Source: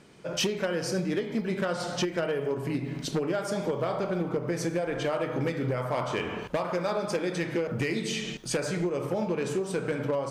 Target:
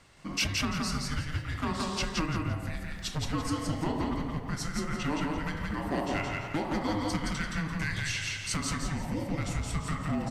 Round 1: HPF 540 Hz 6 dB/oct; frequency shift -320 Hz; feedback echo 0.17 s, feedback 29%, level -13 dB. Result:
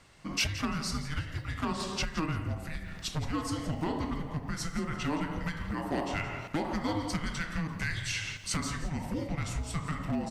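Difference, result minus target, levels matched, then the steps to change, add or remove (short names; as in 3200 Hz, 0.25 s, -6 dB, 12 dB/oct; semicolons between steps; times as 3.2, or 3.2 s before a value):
echo-to-direct -10.5 dB
change: feedback echo 0.17 s, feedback 29%, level -2.5 dB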